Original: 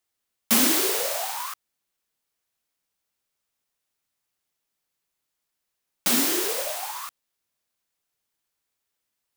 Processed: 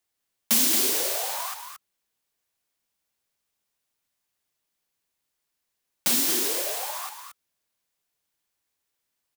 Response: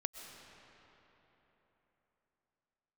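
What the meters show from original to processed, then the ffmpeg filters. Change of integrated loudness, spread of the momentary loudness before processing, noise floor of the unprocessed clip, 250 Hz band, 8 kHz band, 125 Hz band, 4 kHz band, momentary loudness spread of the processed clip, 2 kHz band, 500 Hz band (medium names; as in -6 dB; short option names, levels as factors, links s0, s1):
0.0 dB, 17 LU, -82 dBFS, -6.0 dB, +0.5 dB, -4.0 dB, -0.5 dB, 16 LU, -3.5 dB, -4.0 dB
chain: -filter_complex "[0:a]bandreject=f=1300:w=22,acrossover=split=130|3000[s0][s1][s2];[s1]acompressor=threshold=0.0282:ratio=6[s3];[s0][s3][s2]amix=inputs=3:normalize=0,aecho=1:1:225:0.422"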